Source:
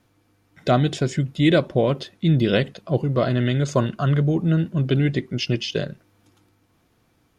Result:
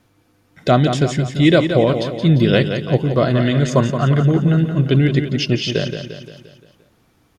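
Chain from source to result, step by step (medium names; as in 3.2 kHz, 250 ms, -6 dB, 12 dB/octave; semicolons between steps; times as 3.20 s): feedback delay 174 ms, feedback 52%, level -8 dB; trim +4.5 dB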